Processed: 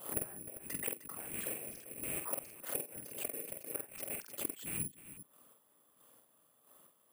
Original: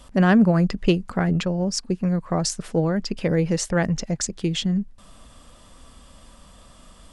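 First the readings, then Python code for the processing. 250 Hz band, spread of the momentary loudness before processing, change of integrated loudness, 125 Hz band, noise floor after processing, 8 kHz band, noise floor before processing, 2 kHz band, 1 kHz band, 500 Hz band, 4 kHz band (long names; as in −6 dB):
−30.0 dB, 8 LU, −17.5 dB, −31.0 dB, −71 dBFS, −8.5 dB, −50 dBFS, −18.5 dB, −22.5 dB, −22.5 dB, −23.0 dB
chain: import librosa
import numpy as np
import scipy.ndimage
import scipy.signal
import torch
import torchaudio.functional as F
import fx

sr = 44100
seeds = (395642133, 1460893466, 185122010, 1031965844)

y = fx.rattle_buzz(x, sr, strikes_db=-33.0, level_db=-16.0)
y = scipy.signal.sosfilt(scipy.signal.butter(4, 270.0, 'highpass', fs=sr, output='sos'), y)
y = fx.high_shelf(y, sr, hz=5500.0, db=8.0)
y = fx.level_steps(y, sr, step_db=22)
y = fx.whisperise(y, sr, seeds[0])
y = fx.chopper(y, sr, hz=1.5, depth_pct=60, duty_pct=30)
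y = fx.gate_flip(y, sr, shuts_db=-23.0, range_db=-26)
y = np.clip(y, -10.0 ** (-33.0 / 20.0), 10.0 ** (-33.0 / 20.0))
y = fx.spacing_loss(y, sr, db_at_10k=30)
y = fx.echo_multitap(y, sr, ms=(47, 85, 307, 395), db=(-4.5, -20.0, -15.5, -14.5))
y = (np.kron(scipy.signal.resample_poly(y, 1, 4), np.eye(4)[0]) * 4)[:len(y)]
y = fx.pre_swell(y, sr, db_per_s=120.0)
y = y * 10.0 ** (2.0 / 20.0)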